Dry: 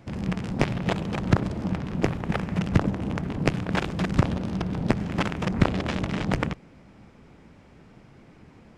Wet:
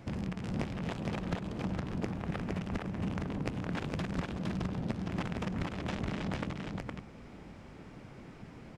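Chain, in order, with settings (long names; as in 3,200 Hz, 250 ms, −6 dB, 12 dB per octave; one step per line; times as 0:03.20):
downward compressor 10 to 1, threshold −33 dBFS, peak gain reduction 20 dB
on a send: single-tap delay 463 ms −3 dB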